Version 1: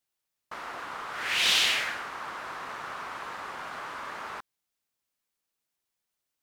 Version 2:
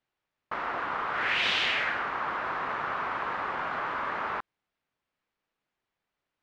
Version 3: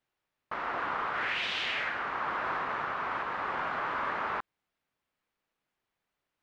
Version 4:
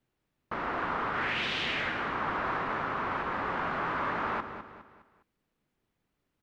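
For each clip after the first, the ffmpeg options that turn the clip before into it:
-af "lowpass=2400,acompressor=threshold=0.0251:ratio=3,volume=2.24"
-af "alimiter=limit=0.075:level=0:latency=1:release=426"
-filter_complex "[0:a]aecho=1:1:205|410|615|820:0.282|0.113|0.0451|0.018,acrossover=split=380[s0][s1];[s0]aeval=exprs='0.0126*sin(PI/2*2.82*val(0)/0.0126)':c=same[s2];[s2][s1]amix=inputs=2:normalize=0"

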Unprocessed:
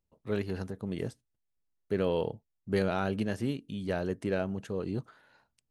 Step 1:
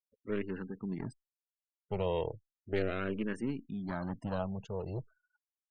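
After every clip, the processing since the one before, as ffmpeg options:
-filter_complex "[0:a]aeval=exprs='clip(val(0),-1,0.0141)':c=same,afftfilt=real='re*gte(hypot(re,im),0.00501)':imag='im*gte(hypot(re,im),0.00501)':win_size=1024:overlap=0.75,asplit=2[s0][s1];[s1]afreqshift=-0.36[s2];[s0][s2]amix=inputs=2:normalize=1"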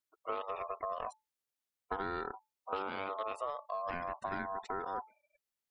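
-af "aeval=exprs='val(0)*sin(2*PI*870*n/s)':c=same,acompressor=threshold=0.00891:ratio=6,volume=2.24"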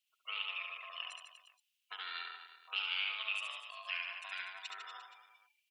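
-af "highpass=f=2800:t=q:w=6.7,aecho=1:1:70|150.5|243.1|349.5|472:0.631|0.398|0.251|0.158|0.1,volume=1.26"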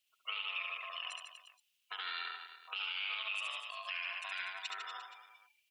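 -af "alimiter=level_in=2.66:limit=0.0631:level=0:latency=1:release=60,volume=0.376,volume=1.58"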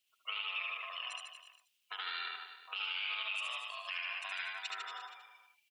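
-af "aecho=1:1:78:0.473"

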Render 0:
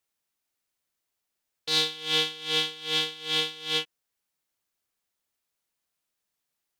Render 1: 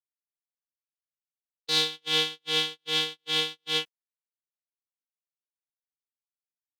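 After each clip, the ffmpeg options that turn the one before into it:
-af "agate=range=0.0112:threshold=0.02:ratio=16:detection=peak"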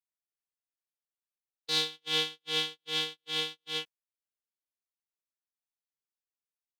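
-af "tremolo=f=2.3:d=0.39,volume=0.631"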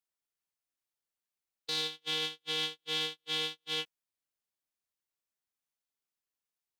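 -af "alimiter=limit=0.0708:level=0:latency=1:release=14,volume=1.26"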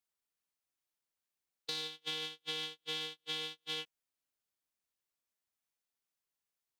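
-af "acompressor=threshold=0.0178:ratio=6"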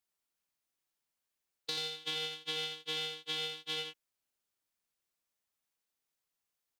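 -af "aecho=1:1:85:0.531,volume=1.19"

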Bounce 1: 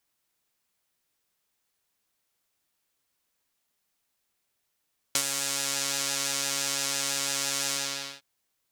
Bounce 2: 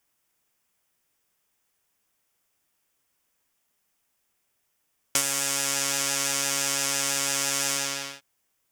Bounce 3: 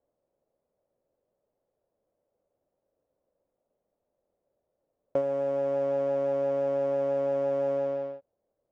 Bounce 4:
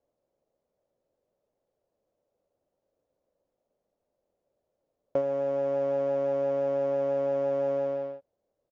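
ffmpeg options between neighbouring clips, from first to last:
-af "equalizer=f=4100:w=4.2:g=-8.5,volume=1.58"
-af "lowpass=f=560:t=q:w=5.4"
-af "aresample=16000,aresample=44100"

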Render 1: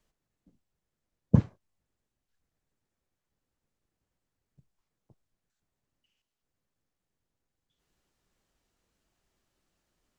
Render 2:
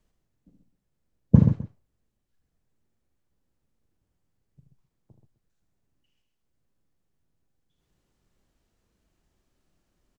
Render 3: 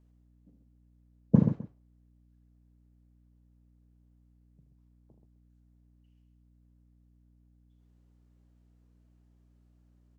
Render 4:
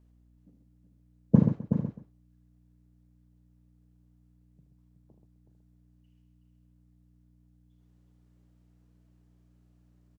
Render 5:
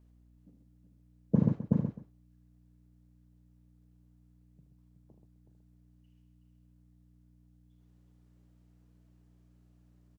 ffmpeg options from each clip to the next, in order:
-filter_complex "[0:a]lowshelf=f=450:g=8,asplit=2[s0][s1];[s1]aecho=0:1:41|76|130|258:0.299|0.422|0.422|0.1[s2];[s0][s2]amix=inputs=2:normalize=0,volume=0.841"
-af "highpass=200,tiltshelf=f=1500:g=4,aeval=exprs='val(0)+0.00141*(sin(2*PI*60*n/s)+sin(2*PI*2*60*n/s)/2+sin(2*PI*3*60*n/s)/3+sin(2*PI*4*60*n/s)/4+sin(2*PI*5*60*n/s)/5)':c=same,volume=0.596"
-af "aecho=1:1:373:0.398,volume=1.19"
-af "alimiter=limit=0.237:level=0:latency=1:release=179"

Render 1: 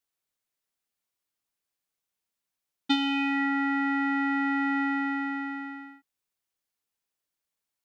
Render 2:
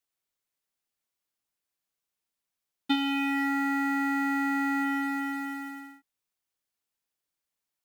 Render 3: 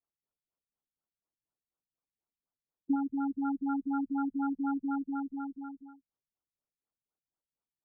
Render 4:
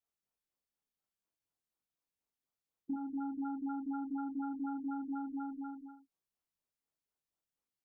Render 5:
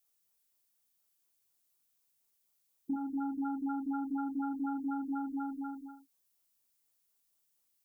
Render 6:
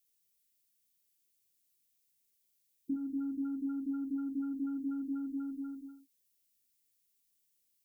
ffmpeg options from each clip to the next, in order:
-filter_complex "[0:a]acrusher=bits=4:mode=log:mix=0:aa=0.000001,acrossover=split=4100[s0][s1];[s1]acompressor=threshold=0.00398:ratio=4:attack=1:release=60[s2];[s0][s2]amix=inputs=2:normalize=0,volume=0.891"
-af "afftfilt=real='re*lt(b*sr/1024,200*pow(1600/200,0.5+0.5*sin(2*PI*4.1*pts/sr)))':imag='im*lt(b*sr/1024,200*pow(1600/200,0.5+0.5*sin(2*PI*4.1*pts/sr)))':win_size=1024:overlap=0.75,volume=0.841"
-filter_complex "[0:a]acompressor=threshold=0.0158:ratio=6,asplit=2[s0][s1];[s1]aecho=0:1:22|41|63:0.501|0.447|0.316[s2];[s0][s2]amix=inputs=2:normalize=0,volume=0.794"
-af "crystalizer=i=3:c=0,volume=1.41"
-af "asuperstop=centerf=970:order=4:qfactor=0.72"

